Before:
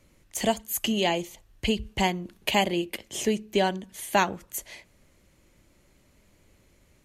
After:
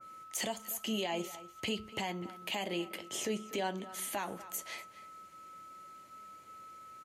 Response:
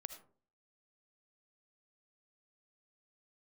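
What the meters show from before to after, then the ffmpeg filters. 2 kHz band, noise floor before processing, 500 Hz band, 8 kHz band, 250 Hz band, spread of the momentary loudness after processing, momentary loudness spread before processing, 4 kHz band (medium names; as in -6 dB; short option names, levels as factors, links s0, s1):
-10.5 dB, -62 dBFS, -11.0 dB, -6.0 dB, -10.5 dB, 16 LU, 12 LU, -9.0 dB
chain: -filter_complex "[0:a]highpass=120,lowshelf=f=300:g=-8.5,aeval=exprs='val(0)+0.00282*sin(2*PI*1300*n/s)':c=same,acompressor=threshold=0.0355:ratio=6,alimiter=level_in=1.58:limit=0.0631:level=0:latency=1:release=44,volume=0.631,flanger=delay=9.2:depth=1.6:regen=-63:speed=0.44:shape=sinusoidal,asplit=2[s0][s1];[s1]adelay=244.9,volume=0.158,highshelf=f=4000:g=-5.51[s2];[s0][s2]amix=inputs=2:normalize=0,adynamicequalizer=threshold=0.00178:dfrequency=1800:dqfactor=0.7:tfrequency=1800:tqfactor=0.7:attack=5:release=100:ratio=0.375:range=2.5:mode=cutabove:tftype=highshelf,volume=2.11"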